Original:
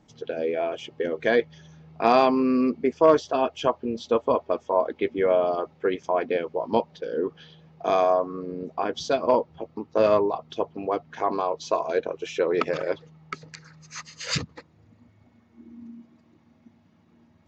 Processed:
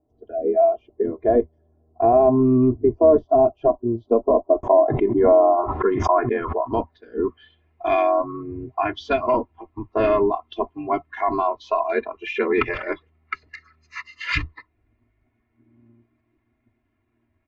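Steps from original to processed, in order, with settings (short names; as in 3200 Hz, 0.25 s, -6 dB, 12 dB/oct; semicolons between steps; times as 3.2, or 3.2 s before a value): octaver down 1 oct, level -1 dB; spectral noise reduction 15 dB; comb 2.9 ms, depth 99%; limiter -11 dBFS, peak gain reduction 8 dB; low-pass sweep 610 Hz -> 2300 Hz, 4.52–7.53; 4.63–6.72 backwards sustainer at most 37 dB/s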